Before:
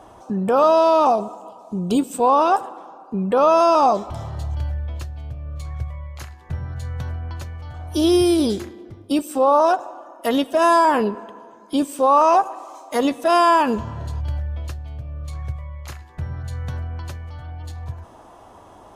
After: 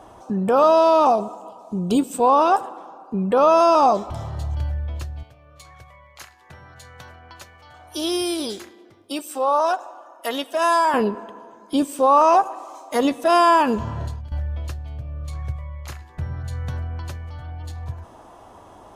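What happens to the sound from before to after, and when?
5.23–10.94 s: high-pass 890 Hz 6 dB/octave
13.79–14.32 s: compressor with a negative ratio -28 dBFS, ratio -0.5

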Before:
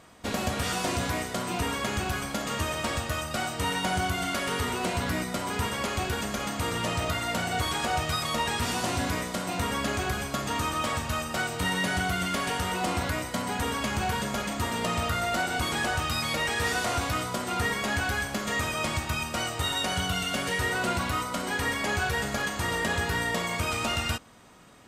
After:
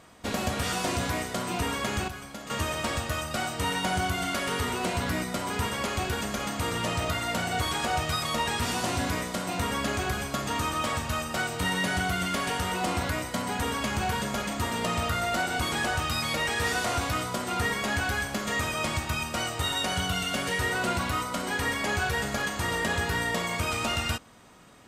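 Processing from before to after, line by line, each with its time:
2.08–2.50 s: gain -9 dB

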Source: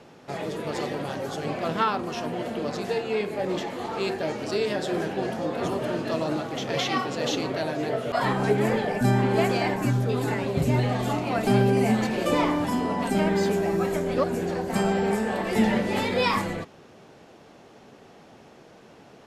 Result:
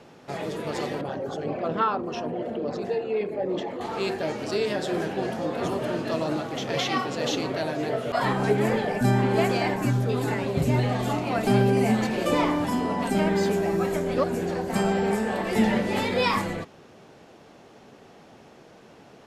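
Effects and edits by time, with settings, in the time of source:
1.01–3.81 s: resonances exaggerated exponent 1.5

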